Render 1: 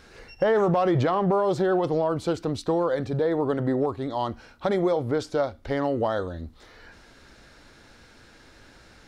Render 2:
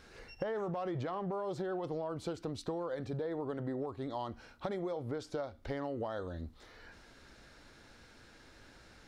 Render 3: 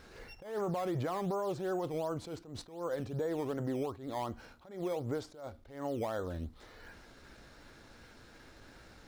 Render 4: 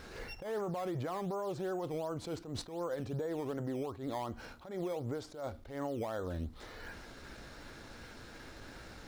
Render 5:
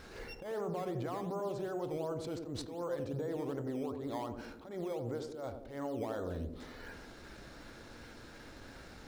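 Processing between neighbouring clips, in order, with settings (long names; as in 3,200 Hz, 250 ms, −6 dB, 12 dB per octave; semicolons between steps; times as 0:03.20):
downward compressor 5 to 1, threshold −29 dBFS, peak gain reduction 10 dB; level −6 dB
in parallel at −8 dB: sample-and-hold swept by an LFO 11×, swing 100% 2.7 Hz; on the sum: level that may rise only so fast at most 110 dB per second
downward compressor, threshold −40 dBFS, peak gain reduction 9 dB; level +5.5 dB
feedback echo with a band-pass in the loop 89 ms, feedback 67%, band-pass 320 Hz, level −4 dB; level −2 dB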